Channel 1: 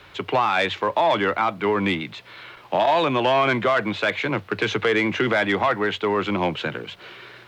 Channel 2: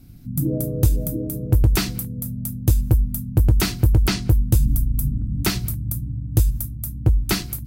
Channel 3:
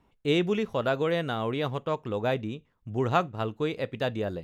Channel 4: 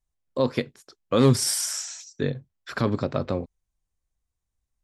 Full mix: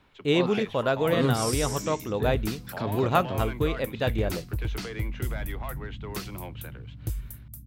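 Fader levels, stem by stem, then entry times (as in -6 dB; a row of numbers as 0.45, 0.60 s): -18.5, -14.5, +1.5, -7.5 dB; 0.00, 0.70, 0.00, 0.00 s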